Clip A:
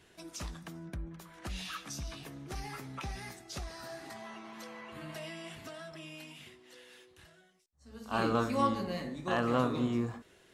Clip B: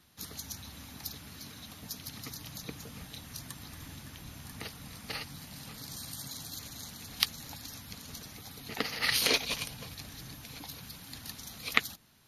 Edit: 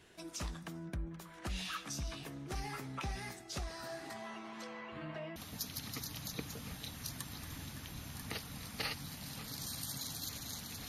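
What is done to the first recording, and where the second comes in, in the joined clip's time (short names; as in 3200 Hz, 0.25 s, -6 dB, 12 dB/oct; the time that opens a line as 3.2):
clip A
4.48–5.36 LPF 12000 Hz -> 1400 Hz
5.36 switch to clip B from 1.66 s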